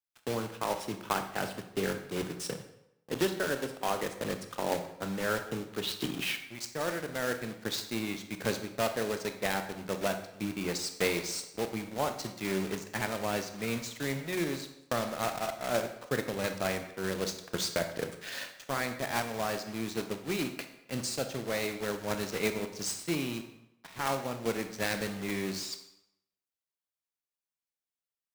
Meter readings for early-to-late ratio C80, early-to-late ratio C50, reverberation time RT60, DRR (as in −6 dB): 12.0 dB, 9.0 dB, 0.80 s, 7.0 dB